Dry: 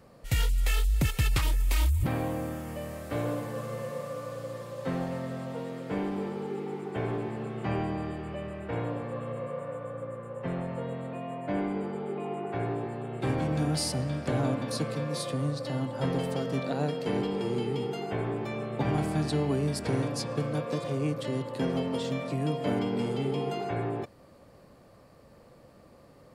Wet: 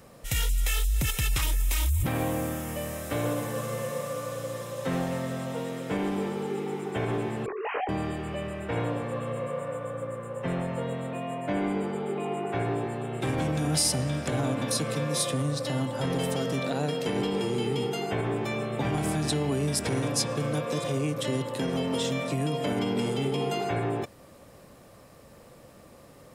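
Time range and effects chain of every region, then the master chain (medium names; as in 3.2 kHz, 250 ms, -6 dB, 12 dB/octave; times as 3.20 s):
7.46–7.89 s: formants replaced by sine waves + distance through air 170 m + detune thickener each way 18 cents
whole clip: band-stop 4.5 kHz, Q 6.9; peak limiter -23 dBFS; treble shelf 2.9 kHz +9.5 dB; trim +3 dB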